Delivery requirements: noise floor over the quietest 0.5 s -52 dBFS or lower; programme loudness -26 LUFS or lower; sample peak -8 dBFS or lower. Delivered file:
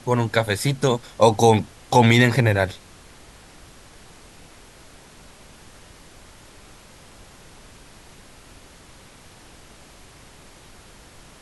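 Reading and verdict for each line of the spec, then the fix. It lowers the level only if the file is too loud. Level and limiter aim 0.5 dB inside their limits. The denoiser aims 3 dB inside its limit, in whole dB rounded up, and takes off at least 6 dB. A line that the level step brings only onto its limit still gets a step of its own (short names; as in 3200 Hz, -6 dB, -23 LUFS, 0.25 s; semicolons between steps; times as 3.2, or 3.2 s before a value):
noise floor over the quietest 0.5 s -47 dBFS: fail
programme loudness -19.0 LUFS: fail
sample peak -1.5 dBFS: fail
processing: gain -7.5 dB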